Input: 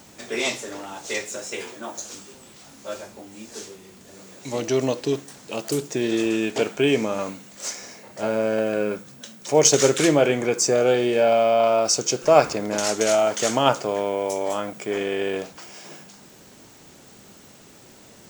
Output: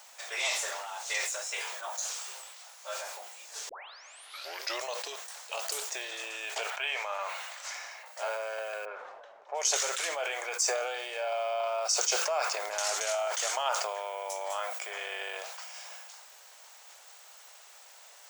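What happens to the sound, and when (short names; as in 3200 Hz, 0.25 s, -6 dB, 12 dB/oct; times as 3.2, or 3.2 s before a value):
3.69 tape start 1.16 s
6.7–8.06 three-band isolator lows -21 dB, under 520 Hz, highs -12 dB, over 3600 Hz
8.85–9.76 low-pass opened by the level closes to 520 Hz, open at -13.5 dBFS
whole clip: compressor 4:1, threshold -23 dBFS; inverse Chebyshev high-pass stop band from 260 Hz, stop band 50 dB; sustainer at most 30 dB/s; gain -2.5 dB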